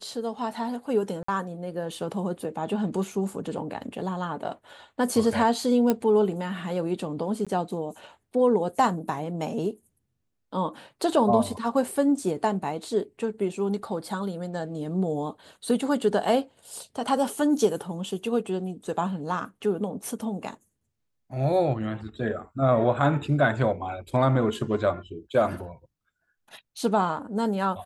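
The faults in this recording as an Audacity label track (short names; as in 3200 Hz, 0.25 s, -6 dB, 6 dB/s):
1.230000	1.280000	gap 54 ms
5.900000	5.900000	pop -10 dBFS
7.450000	7.470000	gap 16 ms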